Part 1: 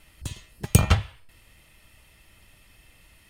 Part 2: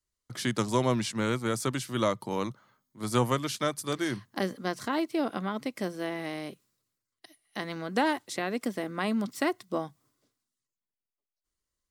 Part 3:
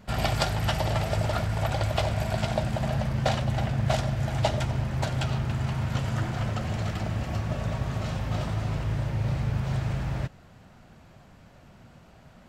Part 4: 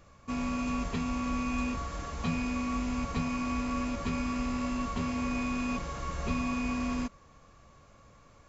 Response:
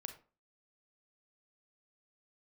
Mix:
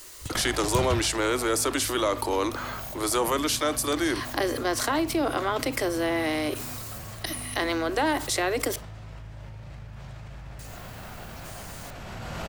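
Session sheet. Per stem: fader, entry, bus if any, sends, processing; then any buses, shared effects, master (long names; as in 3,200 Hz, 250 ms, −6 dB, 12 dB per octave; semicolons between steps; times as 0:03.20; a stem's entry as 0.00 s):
−4.0 dB, 0.00 s, no send, brickwall limiter −13.5 dBFS, peak gain reduction 8.5 dB
−2.0 dB, 0.00 s, muted 0:08.76–0:10.59, send −4 dB, Butterworth high-pass 280 Hz 72 dB per octave; high-shelf EQ 11,000 Hz +6 dB; envelope flattener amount 70%
−6.5 dB, 0.35 s, send −10.5 dB, parametric band 200 Hz −7 dB 2.3 octaves; tuned comb filter 54 Hz, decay 0.29 s, harmonics all, mix 60%; envelope flattener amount 100%; automatic ducking −13 dB, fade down 1.80 s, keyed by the second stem
−13.5 dB, 1.00 s, no send, no processing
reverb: on, RT60 0.35 s, pre-delay 32 ms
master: no processing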